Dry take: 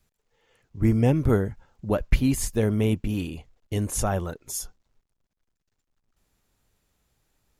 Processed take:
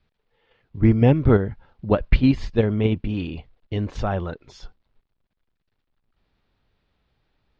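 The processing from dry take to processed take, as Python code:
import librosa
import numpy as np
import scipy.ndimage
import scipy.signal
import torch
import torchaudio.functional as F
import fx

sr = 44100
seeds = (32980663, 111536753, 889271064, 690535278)

p1 = scipy.signal.sosfilt(scipy.signal.butter(6, 4400.0, 'lowpass', fs=sr, output='sos'), x)
p2 = fx.level_steps(p1, sr, step_db=21)
y = p1 + (p2 * librosa.db_to_amplitude(1.0))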